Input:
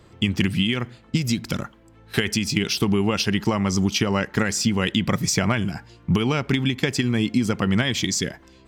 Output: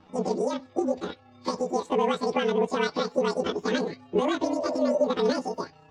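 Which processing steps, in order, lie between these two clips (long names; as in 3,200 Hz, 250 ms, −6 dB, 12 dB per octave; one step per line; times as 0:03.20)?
partials spread apart or drawn together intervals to 109%
Bessel low-pass filter 1,500 Hz, order 6
change of speed 2.35×
healed spectral selection 0:02.81–0:03.08, 430–1,100 Hz both
time stretch by overlap-add 1.6×, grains 63 ms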